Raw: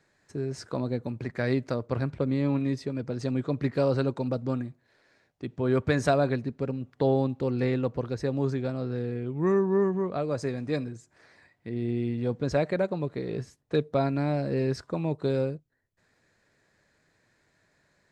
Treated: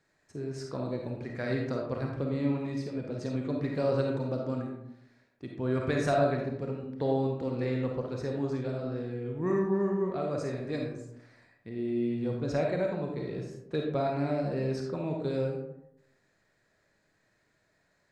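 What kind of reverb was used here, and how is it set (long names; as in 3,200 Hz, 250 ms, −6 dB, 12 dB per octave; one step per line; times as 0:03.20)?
comb and all-pass reverb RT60 0.83 s, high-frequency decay 0.45×, pre-delay 10 ms, DRR 0 dB
level −6 dB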